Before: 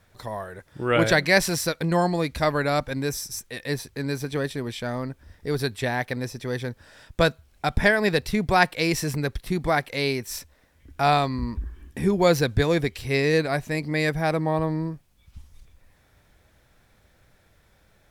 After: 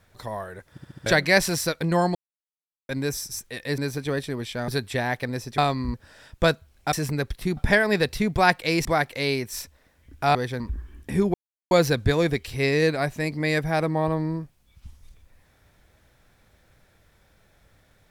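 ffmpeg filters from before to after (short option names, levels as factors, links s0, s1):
-filter_complex "[0:a]asplit=18[s0][s1][s2][s3][s4][s5][s6][s7][s8][s9][s10][s11][s12][s13][s14][s15][s16][s17];[s0]atrim=end=0.782[s18];[s1]atrim=start=0.708:end=0.782[s19];[s2]atrim=start=0.708:end=0.782[s20];[s3]atrim=start=0.708:end=0.782[s21];[s4]atrim=start=0.708:end=0.782[s22];[s5]atrim=start=1.058:end=2.15,asetpts=PTS-STARTPTS,afade=t=out:st=1.088:d=0.004:c=hsin[s23];[s6]atrim=start=2.15:end=2.89,asetpts=PTS-STARTPTS,volume=0[s24];[s7]atrim=start=2.89:end=3.782,asetpts=PTS-STARTPTS,afade=t=in:d=0.004:c=hsin[s25];[s8]atrim=start=4.048:end=4.952[s26];[s9]atrim=start=5.558:end=6.462[s27];[s10]atrim=start=11.118:end=11.482[s28];[s11]atrim=start=6.708:end=7.702[s29];[s12]atrim=start=8.978:end=9.622[s30];[s13]atrim=start=7.698:end=8.982[s31];[s14]atrim=start=9.618:end=11.122[s32];[s15]atrim=start=6.458:end=6.712[s33];[s16]atrim=start=11.478:end=12.22,asetpts=PTS-STARTPTS,afade=t=out:st=0.738:d=0.004:c=hsin,apad=pad_dur=0.37[s34];[s17]atrim=start=12.22,asetpts=PTS-STARTPTS,afade=t=in:d=0.004:c=hsin[s35];[s18][s19]acrossfade=d=0.004:c1=hsin:c2=hsin[s36];[s36][s20]acrossfade=d=0.004:c1=hsin:c2=hsin[s37];[s37][s21]acrossfade=d=0.004:c1=hsin:c2=hsin[s38];[s38][s22]acrossfade=d=0.004:c1=hsin:c2=hsin[s39];[s23][s24][s25]concat=n=3:v=0:a=1[s40];[s39][s40]acrossfade=d=0.004:c1=hsin:c2=hsin[s41];[s41][s26]acrossfade=d=0.004:c1=hsin:c2=hsin[s42];[s42][s27]acrossfade=d=0.004:c1=hsin:c2=hsin[s43];[s43][s28]acrossfade=d=0.004:c1=hsin:c2=hsin[s44];[s44][s29]acrossfade=d=0.004:c1=hsin:c2=hsin[s45];[s45][s30]acrossfade=d=0.004:c1=hsin:c2=hsin[s46];[s46][s31]acrossfade=d=0.004:c1=hsin:c2=hsin[s47];[s47][s32]acrossfade=d=0.004:c1=hsin:c2=hsin[s48];[s48][s33]acrossfade=d=0.004:c1=hsin:c2=hsin[s49];[s34][s35]concat=n=2:v=0:a=1[s50];[s49][s50]acrossfade=d=0.004:c1=hsin:c2=hsin"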